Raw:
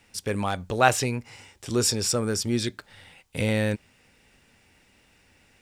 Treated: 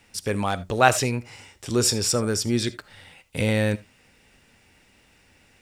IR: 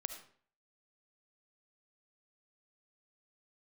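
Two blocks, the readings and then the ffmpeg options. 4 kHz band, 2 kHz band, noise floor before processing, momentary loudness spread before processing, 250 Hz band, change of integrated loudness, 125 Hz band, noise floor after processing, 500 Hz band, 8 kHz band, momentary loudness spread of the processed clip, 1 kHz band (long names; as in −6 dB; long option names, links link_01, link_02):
+2.0 dB, +2.0 dB, −61 dBFS, 13 LU, +2.0 dB, +2.0 dB, +2.5 dB, −59 dBFS, +2.0 dB, +2.0 dB, 13 LU, +2.0 dB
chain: -filter_complex "[0:a]asplit=2[link_01][link_02];[1:a]atrim=start_sample=2205,atrim=end_sample=3969[link_03];[link_02][link_03]afir=irnorm=-1:irlink=0,volume=-1dB[link_04];[link_01][link_04]amix=inputs=2:normalize=0,volume=-2.5dB"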